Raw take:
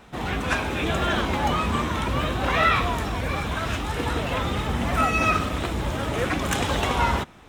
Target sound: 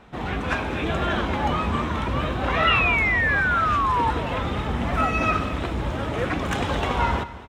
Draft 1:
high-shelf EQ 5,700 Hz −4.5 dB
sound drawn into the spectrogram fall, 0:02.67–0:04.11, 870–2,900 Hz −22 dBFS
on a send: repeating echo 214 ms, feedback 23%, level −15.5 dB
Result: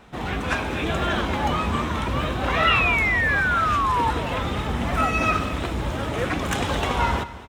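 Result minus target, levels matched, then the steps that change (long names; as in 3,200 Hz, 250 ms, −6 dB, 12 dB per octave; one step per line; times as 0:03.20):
8,000 Hz band +5.5 dB
change: high-shelf EQ 5,700 Hz −14.5 dB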